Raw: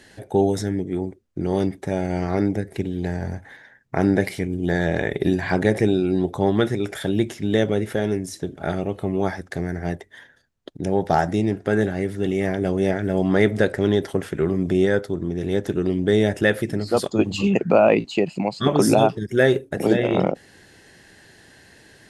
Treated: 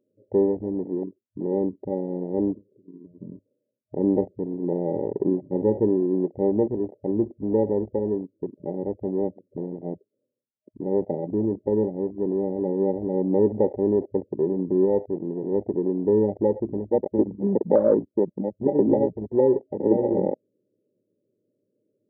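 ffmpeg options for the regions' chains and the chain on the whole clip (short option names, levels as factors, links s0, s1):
-filter_complex "[0:a]asettb=1/sr,asplit=3[s0][s1][s2];[s0]atrim=end=2.534[s3];[s1]atrim=start=2.53:end=3.22,asetpts=PTS-STARTPTS,afade=t=in:d=0.004:c=qsin,afade=t=out:st=0.686:d=0.004:c=qsin,lowpass=1900,acompressor=threshold=0.0251:ratio=10:attack=3.2:release=140:knee=1:detection=peak[s4];[s2]atrim=start=3.216[s5];[s3][s4]acrossfade=d=0.004:c1=hsin:c2=qsin[s6];[s6][s5]acrossfade=d=0.004:c1=qsin:c2=hsin,afftfilt=real='re*between(b*sr/4096,100,620)':imag='im*between(b*sr/4096,100,620)':win_size=4096:overlap=0.75,afwtdn=0.0708,equalizer=f=140:t=o:w=0.77:g=-12.5"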